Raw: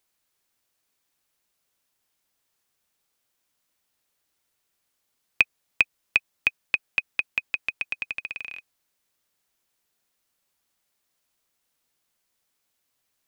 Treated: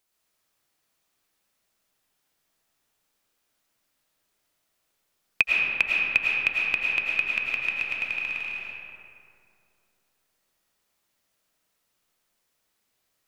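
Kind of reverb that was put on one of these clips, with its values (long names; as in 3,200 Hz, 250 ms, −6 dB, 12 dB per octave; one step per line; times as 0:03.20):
comb and all-pass reverb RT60 2.6 s, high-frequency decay 0.45×, pre-delay 65 ms, DRR −4 dB
level −2 dB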